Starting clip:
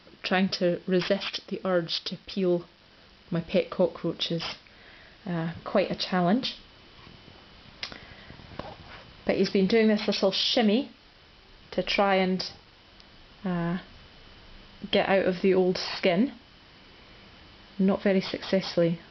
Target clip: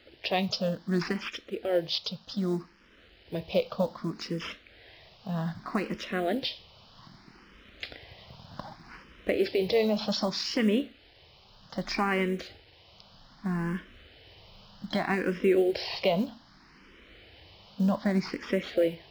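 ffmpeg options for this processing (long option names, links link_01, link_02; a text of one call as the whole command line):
ffmpeg -i in.wav -filter_complex "[0:a]asplit=2[link_01][link_02];[link_02]asetrate=55563,aresample=44100,atempo=0.793701,volume=-18dB[link_03];[link_01][link_03]amix=inputs=2:normalize=0,acrusher=bits=8:mode=log:mix=0:aa=0.000001,asplit=2[link_04][link_05];[link_05]afreqshift=0.64[link_06];[link_04][link_06]amix=inputs=2:normalize=1" out.wav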